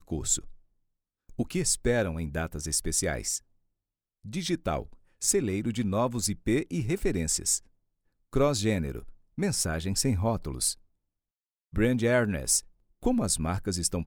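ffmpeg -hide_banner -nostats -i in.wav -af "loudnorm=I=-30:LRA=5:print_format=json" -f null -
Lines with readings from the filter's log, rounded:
"input_i" : "-28.2",
"input_tp" : "-11.4",
"input_lra" : "2.7",
"input_thresh" : "-38.6",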